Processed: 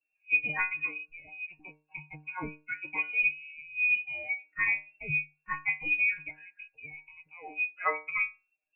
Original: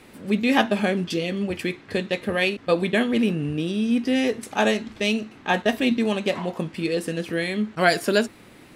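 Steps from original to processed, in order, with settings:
spectral dynamics exaggerated over time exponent 2
voice inversion scrambler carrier 2,700 Hz
stiff-string resonator 150 Hz, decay 0.33 s, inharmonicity 0.002
level +5 dB

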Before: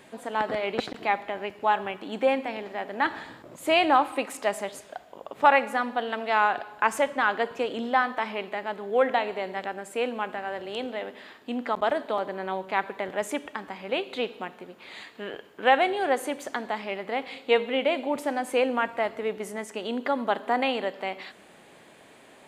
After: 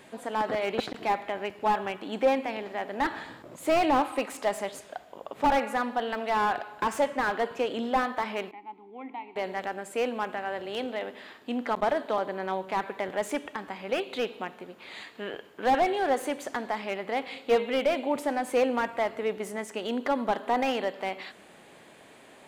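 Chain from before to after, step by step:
0:08.51–0:09.36: formant filter u
slew-rate limiting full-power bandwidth 88 Hz

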